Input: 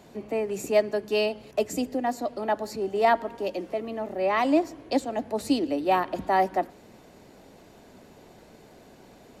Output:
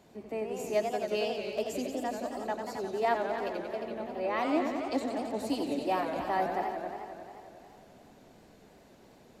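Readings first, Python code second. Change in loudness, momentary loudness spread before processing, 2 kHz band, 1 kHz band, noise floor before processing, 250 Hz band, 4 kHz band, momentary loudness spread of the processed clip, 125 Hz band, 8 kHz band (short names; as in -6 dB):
-6.0 dB, 9 LU, -5.5 dB, -6.0 dB, -52 dBFS, -6.0 dB, -5.5 dB, 10 LU, -5.5 dB, -6.0 dB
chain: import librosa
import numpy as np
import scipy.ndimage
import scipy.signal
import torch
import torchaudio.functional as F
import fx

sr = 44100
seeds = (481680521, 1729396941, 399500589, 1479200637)

y = x + 10.0 ** (-10.5 / 20.0) * np.pad(x, (int(268 * sr / 1000.0), 0))[:len(x)]
y = fx.echo_warbled(y, sr, ms=89, feedback_pct=80, rate_hz=2.8, cents=190, wet_db=-7.0)
y = y * librosa.db_to_amplitude(-8.0)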